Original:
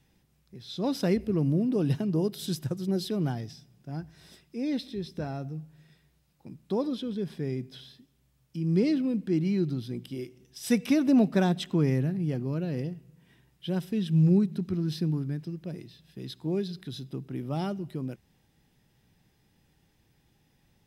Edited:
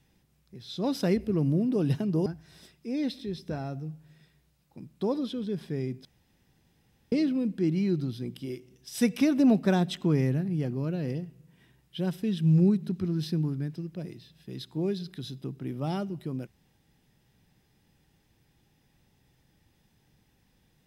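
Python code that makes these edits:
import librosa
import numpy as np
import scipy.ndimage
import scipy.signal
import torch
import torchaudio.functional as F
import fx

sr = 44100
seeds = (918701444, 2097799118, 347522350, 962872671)

y = fx.edit(x, sr, fx.cut(start_s=2.26, length_s=1.69),
    fx.room_tone_fill(start_s=7.74, length_s=1.07), tone=tone)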